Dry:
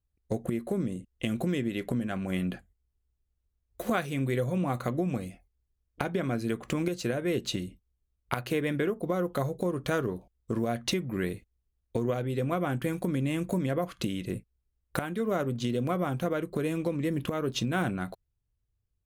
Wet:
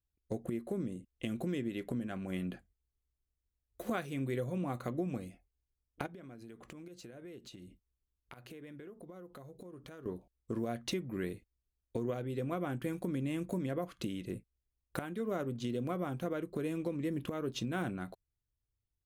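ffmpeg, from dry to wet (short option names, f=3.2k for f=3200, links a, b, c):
-filter_complex "[0:a]asettb=1/sr,asplit=3[a][b][c];[a]atrim=end=6.064[d];[b]atrim=start=6.06:end=10.06,asetpts=PTS-STARTPTS,afade=t=in:d=0.004:c=qsin,afade=t=out:st=3.996:d=0.004:c=qsin,acompressor=threshold=-40dB:ratio=8:attack=3.2:release=140:knee=1:detection=peak[e];[c]atrim=start=10.056[f];[d][e]acrossfade=d=0.004:c1=hsin:c2=qsin[g];[g][f]acrossfade=d=0.004:c1=qsin:c2=hsin,equalizer=f=320:t=o:w=1:g=3.5,volume=-8.5dB"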